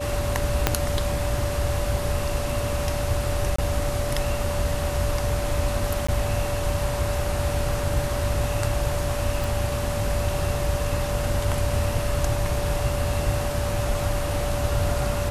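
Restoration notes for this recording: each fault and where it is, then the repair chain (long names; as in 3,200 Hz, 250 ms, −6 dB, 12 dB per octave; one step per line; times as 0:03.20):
whistle 580 Hz −29 dBFS
0:00.67: click −2 dBFS
0:03.56–0:03.58: drop-out 24 ms
0:06.07–0:06.08: drop-out 15 ms
0:09.44: click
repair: click removal
notch filter 580 Hz, Q 30
repair the gap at 0:03.56, 24 ms
repair the gap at 0:06.07, 15 ms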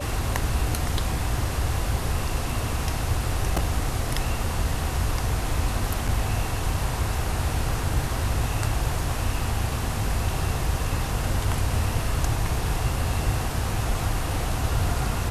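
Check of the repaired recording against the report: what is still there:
0:00.67: click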